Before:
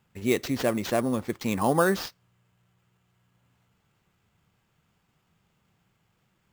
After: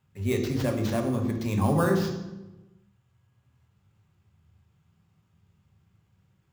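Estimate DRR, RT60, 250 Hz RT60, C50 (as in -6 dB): 2.0 dB, 1.1 s, 1.3 s, 6.0 dB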